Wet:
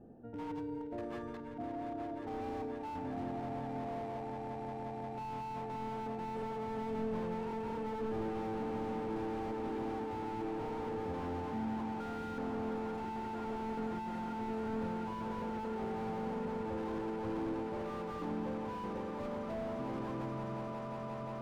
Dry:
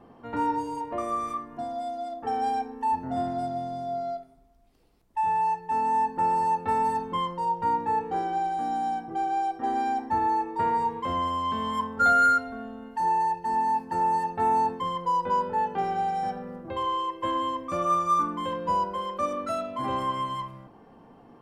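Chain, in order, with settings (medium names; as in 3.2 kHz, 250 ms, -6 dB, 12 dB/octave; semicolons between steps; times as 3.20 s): local Wiener filter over 41 samples; reverse; compression 6:1, threshold -36 dBFS, peak gain reduction 16.5 dB; reverse; feedback comb 110 Hz, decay 0.56 s, harmonics all, mix 60%; on a send: echo with a slow build-up 177 ms, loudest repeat 8, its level -12.5 dB; on the sum: slew-rate limiter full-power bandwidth 4.1 Hz; trim +5.5 dB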